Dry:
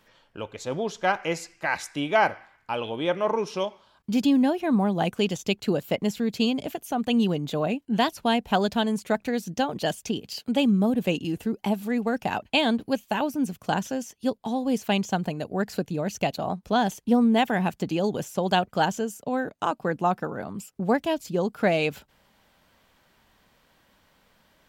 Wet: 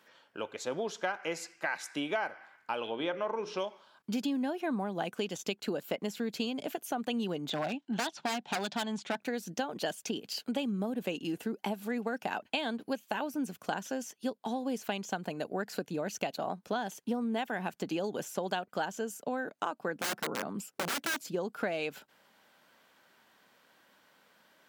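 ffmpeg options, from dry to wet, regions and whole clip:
-filter_complex "[0:a]asettb=1/sr,asplit=3[a][b][c];[a]atrim=end=2.874[d];[b]atrim=start=2.87:end=3.58,asetpts=PTS-STARTPTS,afade=t=in:d=0.004:c=qsin,afade=t=out:st=0.706:d=0.004:c=qsin,lowpass=5.3k,bandreject=f=60:t=h:w=6,bandreject=f=120:t=h:w=6,bandreject=f=180:t=h:w=6,bandreject=f=240:t=h:w=6,bandreject=f=300:t=h:w=6,bandreject=f=360:t=h:w=6,bandreject=f=420:t=h:w=6,bandreject=f=480:t=h:w=6,bandreject=f=540:t=h:w=6,bandreject=f=600:t=h:w=6[e];[c]atrim=start=3.576[f];[d][e]acrossfade=d=0.004:c1=hsin:c2=qsin[g];[g][f]acrossfade=d=0.004:c1=qsin:c2=hsin,asettb=1/sr,asplit=3[h][i][j];[h]atrim=end=7.504[k];[i]atrim=start=7.5:end=9.2,asetpts=PTS-STARTPTS,afade=t=in:d=0.004:c=qsin,afade=t=out:st=1.696:d=0.004:c=qsin,highpass=140,equalizer=f=150:t=q:w=4:g=6,equalizer=f=470:t=q:w=4:g=-9,equalizer=f=820:t=q:w=4:g=6,equalizer=f=3.5k:t=q:w=4:g=8,lowpass=f=7k:w=0.5412,lowpass=f=7k:w=1.3066,aeval=exprs='0.119*(abs(mod(val(0)/0.119+3,4)-2)-1)':c=same[l];[j]atrim=start=9.196[m];[k][l]acrossfade=d=0.004:c1=hsin:c2=qsin[n];[n][m]acrossfade=d=0.004:c1=qsin:c2=hsin,asettb=1/sr,asplit=3[o][p][q];[o]atrim=end=19.954[r];[p]atrim=start=19.95:end=21.29,asetpts=PTS-STARTPTS,afade=t=in:d=0.004:c=qsin,afade=t=out:st=1.336:d=0.004:c=qsin,highpass=81,equalizer=f=170:w=0.36:g=4,aeval=exprs='(mod(12.6*val(0)+1,2)-1)/12.6':c=same[s];[q]atrim=start=21.286[t];[r][s]acrossfade=d=0.004:c1=hsin:c2=qsin[u];[u][t]acrossfade=d=0.004:c1=qsin:c2=hsin,highpass=240,equalizer=f=1.5k:t=o:w=0.33:g=4.5,acompressor=threshold=-28dB:ratio=6,volume=-2dB"

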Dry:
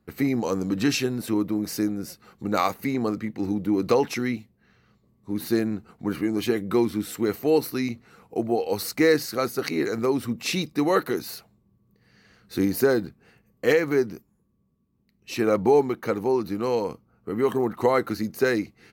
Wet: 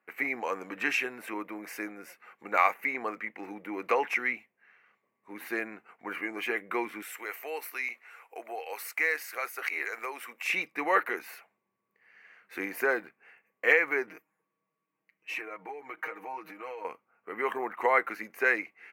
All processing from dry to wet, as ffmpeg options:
-filter_complex "[0:a]asettb=1/sr,asplit=3[a][b][c];[a]atrim=end=7.024[d];[b]atrim=start=7.02:end=10.5,asetpts=PTS-STARTPTS,afade=t=in:d=0.004:c=qsin,afade=t=out:st=3.476:d=0.004:c=qsin,highpass=450,highshelf=f=3.5k:g=10.5,acompressor=threshold=-37dB:ratio=1.5:attack=3.2:release=140:knee=1:detection=peak[e];[c]atrim=start=10.496[f];[d][e]acrossfade=d=0.004:c1=hsin:c2=qsin[g];[g][f]acrossfade=d=0.004:c1=qsin:c2=hsin,asettb=1/sr,asplit=3[h][i][j];[h]atrim=end=14.074[k];[i]atrim=start=14.07:end=16.85,asetpts=PTS-STARTPTS,afade=t=in:d=0.004:c=qsin,afade=t=out:st=2.776:d=0.004:c=qsin,aecho=1:1:6.4:0.93,atrim=end_sample=122598,acompressor=threshold=-30dB:ratio=16:attack=3.2:release=140:knee=1:detection=peak[l];[j]atrim=start=16.846[m];[k][l]acrossfade=d=0.004:c1=hsin:c2=qsin[n];[n][m]acrossfade=d=0.004:c1=qsin:c2=hsin,highpass=740,highshelf=f=3.1k:t=q:w=3:g=-10.5,bandreject=f=1.3k:w=22"

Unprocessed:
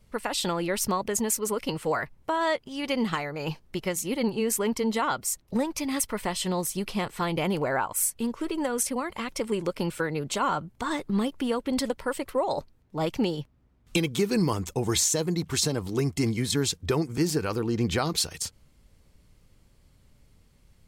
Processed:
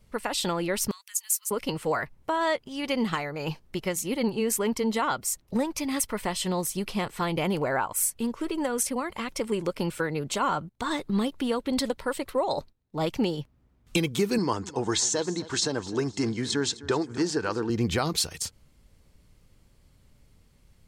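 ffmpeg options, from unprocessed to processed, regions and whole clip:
-filter_complex "[0:a]asettb=1/sr,asplit=3[a][b][c];[a]atrim=end=0.914[d];[b]atrim=start=0.91:end=1.51,asetpts=PTS-STARTPTS,afade=t=in:d=0.004:c=qsin,afade=t=out:st=0.596:d=0.004:c=qsin,highpass=f=1.3k:w=0.5412,highpass=f=1.3k:w=1.3066,aderivative[e];[c]atrim=start=1.506[f];[d][e]acrossfade=d=0.004:c1=hsin:c2=qsin[g];[g][f]acrossfade=d=0.004:c1=qsin:c2=hsin,asettb=1/sr,asplit=3[h][i][j];[h]atrim=end=10.694[k];[i]atrim=start=10.69:end=13.1,asetpts=PTS-STARTPTS,afade=t=in:d=0.004:c=qsin,afade=t=out:st=2.406:d=0.004:c=qsin,agate=range=-14dB:threshold=-55dB:ratio=16:release=100:detection=peak,equalizer=f=3.9k:w=4.6:g=5.5[l];[j]atrim=start=13.096[m];[k][l]acrossfade=d=0.004:c1=hsin:c2=qsin[n];[n][m]acrossfade=d=0.004:c1=qsin:c2=hsin,asettb=1/sr,asplit=3[o][p][q];[o]atrim=end=14.384[r];[p]atrim=start=14.38:end=17.7,asetpts=PTS-STARTPTS,afade=t=in:d=0.004:c=qsin,afade=t=out:st=3.316:d=0.004:c=qsin,highpass=130,equalizer=f=160:t=q:w=4:g=-10,equalizer=f=920:t=q:w=4:g=4,equalizer=f=1.6k:t=q:w=4:g=6,equalizer=f=2.3k:t=q:w=4:g=-6,lowpass=f=7.6k:w=0.5412,lowpass=f=7.6k:w=1.3066,aecho=1:1:257|514|771:0.126|0.0478|0.0182,atrim=end_sample=146412[s];[q]atrim=start=17.696[t];[r][s]acrossfade=d=0.004:c1=hsin:c2=qsin[u];[u][t]acrossfade=d=0.004:c1=qsin:c2=hsin"

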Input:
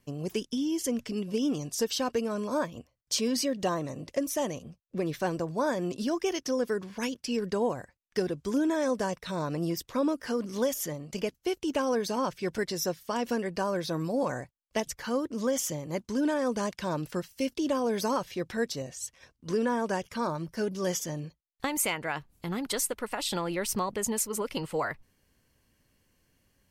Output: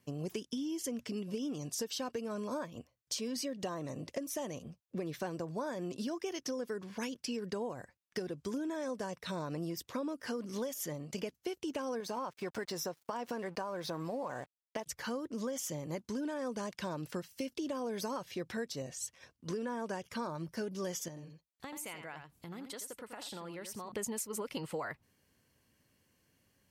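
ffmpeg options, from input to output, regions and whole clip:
-filter_complex "[0:a]asettb=1/sr,asplit=3[a][b][c];[a]atrim=end=12.004[d];[b]atrim=start=12:end=14.86,asetpts=PTS-STARTPTS,afade=t=in:d=0.004:c=qsin,afade=t=out:st=2.856:d=0.004:c=qsin,equalizer=f=930:t=o:w=1.6:g=8.5,aeval=exprs='sgn(val(0))*max(abs(val(0))-0.00376,0)':c=same,acompressor=threshold=-32dB:ratio=2:attack=3.2:release=140:knee=1:detection=peak[e];[c]atrim=start=14.856[f];[d][e]acrossfade=d=0.004:c1=hsin:c2=qsin[g];[g][f]acrossfade=d=0.004:c1=qsin:c2=hsin,asettb=1/sr,asplit=3[h][i][j];[h]atrim=end=21.084[k];[i]atrim=start=21.08:end=23.92,asetpts=PTS-STARTPTS,afade=t=in:d=0.004:c=qsin,afade=t=out:st=2.836:d=0.004:c=qsin,aecho=1:1:83:0.299,atrim=end_sample=125244,acompressor=threshold=-49dB:ratio=2:attack=3.2:release=140:knee=1:detection=peak[l];[j]atrim=start=23.916[m];[k][l]acrossfade=d=0.004:c1=hsin:c2=qsin[n];[n][m]acrossfade=d=0.004:c1=qsin:c2=hsin,highpass=79,acompressor=threshold=-33dB:ratio=6,volume=-2dB"

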